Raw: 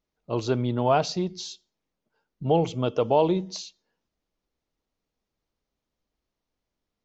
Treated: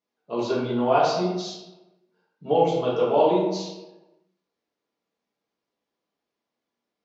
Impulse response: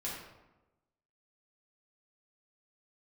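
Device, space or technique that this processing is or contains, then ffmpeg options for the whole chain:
supermarket ceiling speaker: -filter_complex "[0:a]highpass=260,lowpass=6300[s0];[1:a]atrim=start_sample=2205[s1];[s0][s1]afir=irnorm=-1:irlink=0,volume=1.12"

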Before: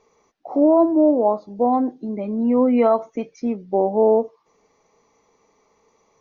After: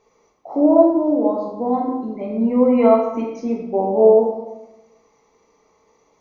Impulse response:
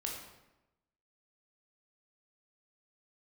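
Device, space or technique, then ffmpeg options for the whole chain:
bathroom: -filter_complex "[1:a]atrim=start_sample=2205[s0];[0:a][s0]afir=irnorm=-1:irlink=0,asettb=1/sr,asplit=3[s1][s2][s3];[s1]atrim=end=0.904[s4];[s2]atrim=start=0.9:end=2.21,asetpts=PTS-STARTPTS,afade=t=in:d=0.004:c=qsin,afade=t=out:st=1.306:d=0.004:c=qsin,equalizer=f=600:w=1.1:g=-5[s5];[s3]atrim=start=2.206[s6];[s4][s5]acrossfade=d=0.004:c1=hsin:c2=qsin[s7];[s7][s6]acrossfade=d=0.004:c1=qsin:c2=hsin,volume=1.12"

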